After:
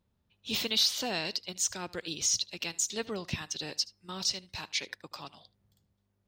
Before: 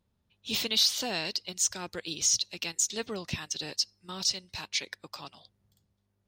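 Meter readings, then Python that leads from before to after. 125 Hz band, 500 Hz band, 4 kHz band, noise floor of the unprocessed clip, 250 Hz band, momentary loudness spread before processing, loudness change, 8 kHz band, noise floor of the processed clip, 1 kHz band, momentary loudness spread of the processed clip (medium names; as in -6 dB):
0.0 dB, 0.0 dB, -2.0 dB, -76 dBFS, 0.0 dB, 17 LU, -2.0 dB, -3.0 dB, -77 dBFS, 0.0 dB, 16 LU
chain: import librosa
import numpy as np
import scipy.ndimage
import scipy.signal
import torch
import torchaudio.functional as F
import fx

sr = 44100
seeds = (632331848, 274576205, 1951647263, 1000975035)

p1 = fx.peak_eq(x, sr, hz=9500.0, db=-3.5, octaves=2.0)
y = p1 + fx.echo_single(p1, sr, ms=76, db=-21.5, dry=0)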